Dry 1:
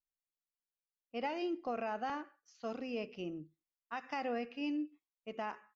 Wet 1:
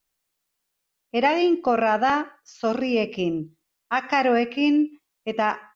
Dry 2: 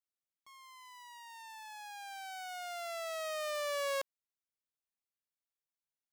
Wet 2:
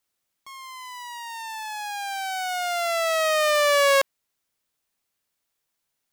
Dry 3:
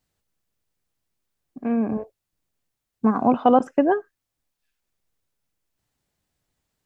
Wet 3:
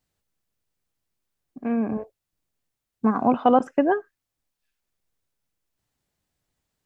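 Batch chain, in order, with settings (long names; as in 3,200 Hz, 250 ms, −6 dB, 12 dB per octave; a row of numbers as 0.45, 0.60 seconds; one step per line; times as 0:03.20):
dynamic equaliser 1,900 Hz, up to +3 dB, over −42 dBFS, Q 0.9
loudness normalisation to −23 LKFS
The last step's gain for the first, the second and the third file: +17.0, +16.0, −2.0 decibels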